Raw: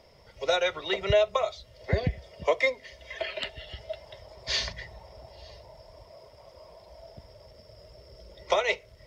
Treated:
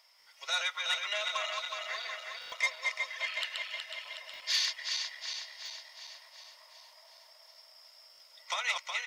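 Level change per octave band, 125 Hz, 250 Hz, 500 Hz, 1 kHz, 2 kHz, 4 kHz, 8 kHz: under -40 dB, under -35 dB, -19.5 dB, -5.5 dB, -0.5 dB, +1.5 dB, n/a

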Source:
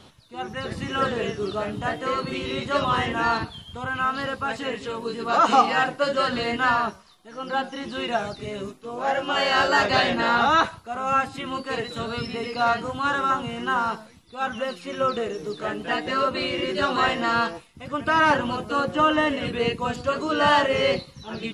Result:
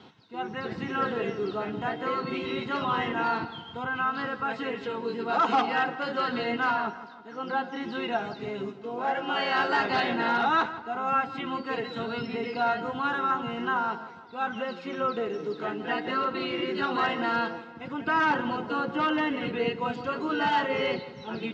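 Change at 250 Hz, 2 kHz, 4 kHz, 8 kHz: -2.5 dB, -4.5 dB, -7.5 dB, under -15 dB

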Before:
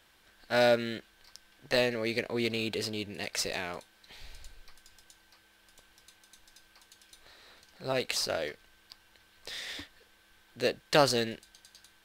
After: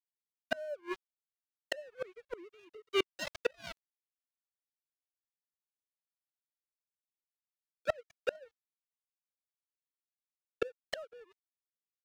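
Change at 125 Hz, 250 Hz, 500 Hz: -20.5, -13.0, -8.5 dB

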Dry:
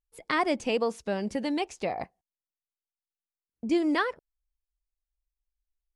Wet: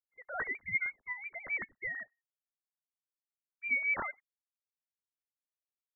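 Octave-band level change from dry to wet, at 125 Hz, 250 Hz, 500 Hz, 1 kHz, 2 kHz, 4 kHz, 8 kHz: under -10 dB, -28.0 dB, -21.0 dB, -13.0 dB, +2.0 dB, under -35 dB, under -30 dB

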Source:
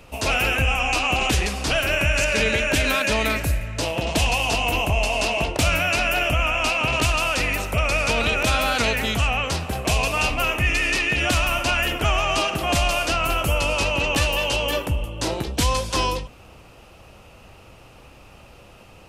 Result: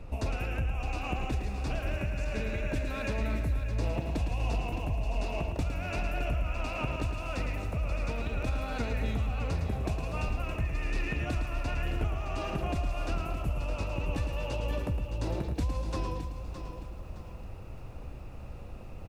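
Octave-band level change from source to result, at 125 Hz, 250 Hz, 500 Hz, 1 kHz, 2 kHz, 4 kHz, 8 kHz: -5.5, -8.0, -12.5, -15.0, -19.0, -22.5, -23.0 dB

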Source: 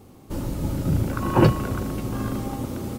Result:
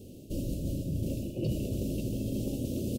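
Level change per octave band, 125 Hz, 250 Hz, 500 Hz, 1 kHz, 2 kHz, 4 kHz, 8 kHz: -9.0 dB, -8.0 dB, -10.0 dB, under -30 dB, -21.5 dB, -8.5 dB, -5.5 dB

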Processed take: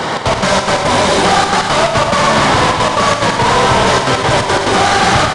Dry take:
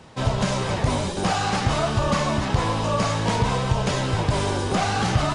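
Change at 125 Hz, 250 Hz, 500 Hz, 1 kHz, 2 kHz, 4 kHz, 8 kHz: +3.0, +7.5, +12.5, +14.0, +15.0, +14.0, +12.5 dB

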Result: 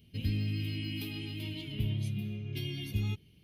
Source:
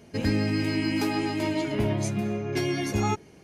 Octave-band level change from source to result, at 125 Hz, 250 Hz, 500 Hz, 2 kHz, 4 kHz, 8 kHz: -3.0, -13.0, -20.0, -12.5, -5.0, -17.5 dB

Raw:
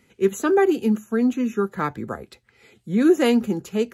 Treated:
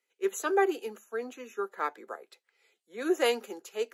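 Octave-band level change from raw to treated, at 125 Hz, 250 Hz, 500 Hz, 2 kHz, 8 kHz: under -30 dB, -17.5 dB, -8.5 dB, -5.0 dB, n/a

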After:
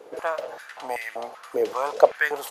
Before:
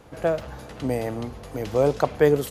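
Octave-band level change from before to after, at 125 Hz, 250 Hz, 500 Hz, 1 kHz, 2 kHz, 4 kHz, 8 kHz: under -25 dB, -14.0 dB, -2.0 dB, +4.0 dB, +8.0 dB, 0.0 dB, -1.0 dB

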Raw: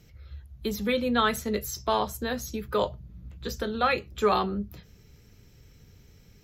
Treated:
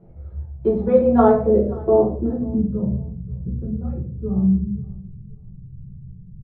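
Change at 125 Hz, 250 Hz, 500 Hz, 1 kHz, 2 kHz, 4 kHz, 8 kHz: +15.0 dB, +12.0 dB, +10.5 dB, +1.5 dB, under -10 dB, under -25 dB, under -40 dB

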